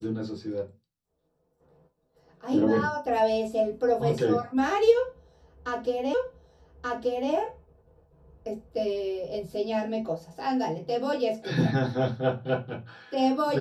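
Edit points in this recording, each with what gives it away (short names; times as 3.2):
6.14 repeat of the last 1.18 s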